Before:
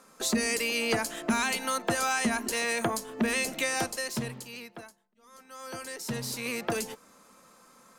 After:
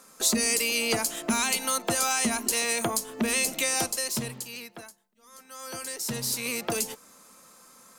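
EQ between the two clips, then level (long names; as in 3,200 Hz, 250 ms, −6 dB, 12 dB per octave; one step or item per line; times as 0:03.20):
dynamic equaliser 1,700 Hz, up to −6 dB, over −48 dBFS, Q 4.5
high-shelf EQ 4,400 Hz +10 dB
0.0 dB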